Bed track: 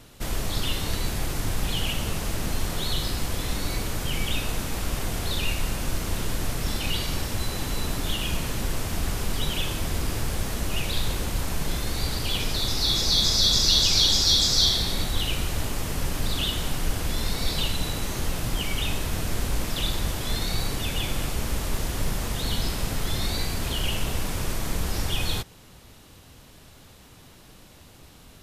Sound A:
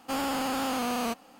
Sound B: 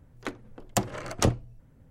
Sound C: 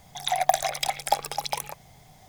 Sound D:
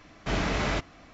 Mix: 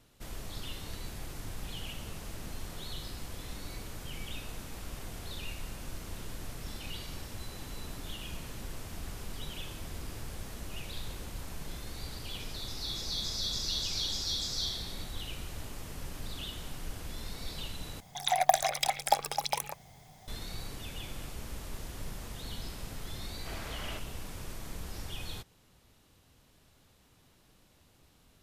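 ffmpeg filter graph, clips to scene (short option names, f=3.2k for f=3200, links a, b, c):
-filter_complex "[0:a]volume=-14dB[a];[4:a]equalizer=f=130:w=0.73:g=-13[b];[a]asplit=2[c][d];[c]atrim=end=18.004[e];[3:a]atrim=end=2.28,asetpts=PTS-STARTPTS,volume=-2.5dB[f];[d]atrim=start=20.276[g];[b]atrim=end=1.13,asetpts=PTS-STARTPTS,volume=-13.5dB,afade=t=in:d=0.004:c=hsin,afade=t=out:st=1.126:d=0.004:c=hsin,adelay=23190[h];[e][f]acrossfade=d=0.004:c1=hsin:c2=hsin[i];[i][g]acrossfade=d=0.004:c1=hsin:c2=hsin[j];[j][h]amix=inputs=2:normalize=0"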